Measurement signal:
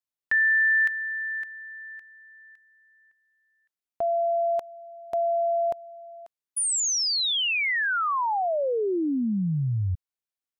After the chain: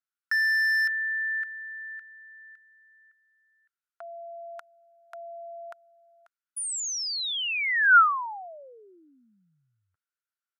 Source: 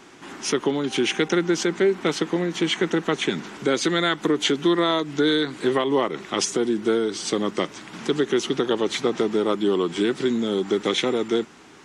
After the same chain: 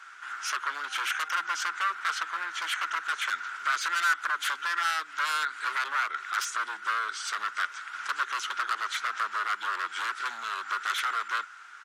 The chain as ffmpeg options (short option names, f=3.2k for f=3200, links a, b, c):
-af "aeval=exprs='0.0891*(abs(mod(val(0)/0.0891+3,4)-2)-1)':c=same,highpass=f=1.4k:t=q:w=8.3,aresample=32000,aresample=44100,volume=-6.5dB"